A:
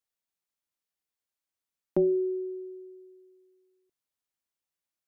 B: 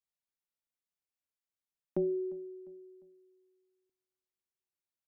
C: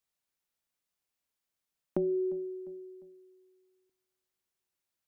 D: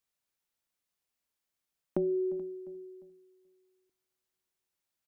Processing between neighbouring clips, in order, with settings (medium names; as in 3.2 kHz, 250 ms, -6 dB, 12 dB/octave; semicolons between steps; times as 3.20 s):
tone controls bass +4 dB, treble -1 dB; feedback delay 351 ms, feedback 42%, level -21 dB; trim -8 dB
compression, threshold -34 dBFS, peak gain reduction 6.5 dB; trim +6.5 dB
delay 431 ms -20 dB